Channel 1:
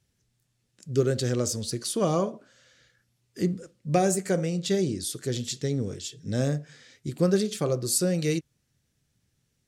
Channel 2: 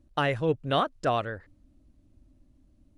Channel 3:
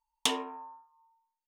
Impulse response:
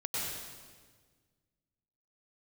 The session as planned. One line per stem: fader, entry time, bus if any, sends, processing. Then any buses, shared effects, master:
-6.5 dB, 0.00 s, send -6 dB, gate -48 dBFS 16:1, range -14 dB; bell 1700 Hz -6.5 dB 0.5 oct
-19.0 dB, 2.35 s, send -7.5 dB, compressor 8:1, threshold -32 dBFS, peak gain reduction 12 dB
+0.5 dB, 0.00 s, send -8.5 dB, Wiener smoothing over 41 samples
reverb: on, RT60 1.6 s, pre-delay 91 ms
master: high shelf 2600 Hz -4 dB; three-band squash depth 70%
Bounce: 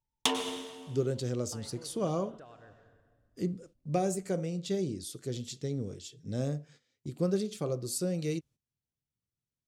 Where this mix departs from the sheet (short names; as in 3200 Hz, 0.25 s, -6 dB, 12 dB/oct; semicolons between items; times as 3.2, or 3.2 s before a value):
stem 1: send off; stem 2: entry 2.35 s -> 1.35 s; master: missing three-band squash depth 70%